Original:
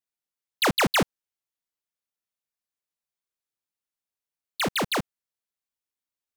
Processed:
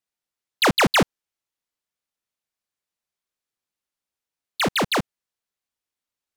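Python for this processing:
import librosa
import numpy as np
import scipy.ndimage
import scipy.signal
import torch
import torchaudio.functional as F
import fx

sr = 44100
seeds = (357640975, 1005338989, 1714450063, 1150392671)

y = fx.high_shelf(x, sr, hz=11000.0, db=-7.5)
y = F.gain(torch.from_numpy(y), 4.5).numpy()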